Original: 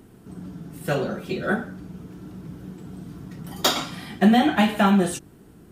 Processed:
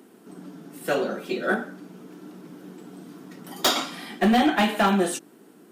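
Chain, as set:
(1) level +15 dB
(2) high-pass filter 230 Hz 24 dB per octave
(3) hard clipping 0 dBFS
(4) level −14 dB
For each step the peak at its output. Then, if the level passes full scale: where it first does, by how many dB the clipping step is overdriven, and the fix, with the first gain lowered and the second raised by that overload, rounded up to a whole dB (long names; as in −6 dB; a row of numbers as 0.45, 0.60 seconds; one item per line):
+10.0, +8.5, 0.0, −14.0 dBFS
step 1, 8.5 dB
step 1 +6 dB, step 4 −5 dB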